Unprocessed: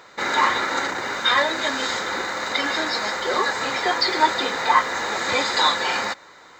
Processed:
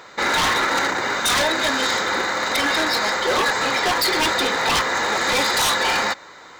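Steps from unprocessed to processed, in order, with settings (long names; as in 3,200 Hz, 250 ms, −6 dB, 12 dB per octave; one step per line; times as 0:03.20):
wave folding −18 dBFS
level +4.5 dB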